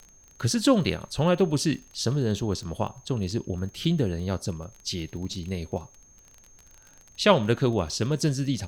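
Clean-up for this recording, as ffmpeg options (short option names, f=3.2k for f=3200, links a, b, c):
-af "adeclick=t=4,bandreject=f=6.4k:w=30,agate=range=-21dB:threshold=-46dB"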